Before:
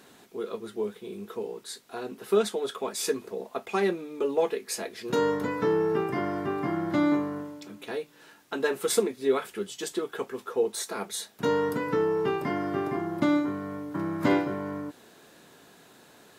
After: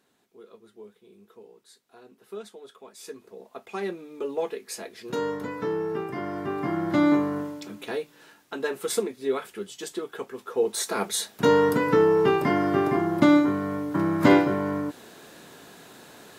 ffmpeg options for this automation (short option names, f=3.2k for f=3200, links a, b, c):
-af "volume=14dB,afade=t=in:st=2.94:d=1.24:silence=0.266073,afade=t=in:st=6.16:d=1.29:silence=0.354813,afade=t=out:st=7.45:d=1.09:silence=0.421697,afade=t=in:st=10.43:d=0.55:silence=0.375837"